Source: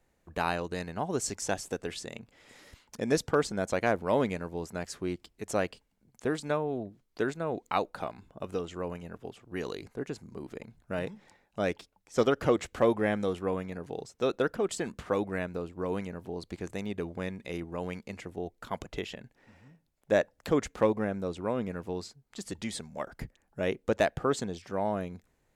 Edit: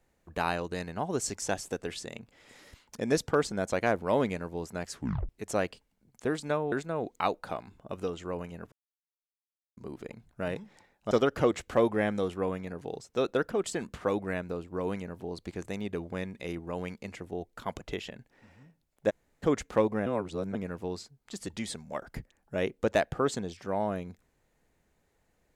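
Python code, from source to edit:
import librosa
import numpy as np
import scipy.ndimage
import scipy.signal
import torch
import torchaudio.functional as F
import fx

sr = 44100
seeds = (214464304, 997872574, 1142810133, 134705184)

y = fx.edit(x, sr, fx.tape_stop(start_s=4.96, length_s=0.33),
    fx.cut(start_s=6.72, length_s=0.51),
    fx.silence(start_s=9.23, length_s=1.05),
    fx.cut(start_s=11.62, length_s=0.54),
    fx.room_tone_fill(start_s=20.15, length_s=0.33, crossfade_s=0.02),
    fx.reverse_span(start_s=21.11, length_s=0.49), tone=tone)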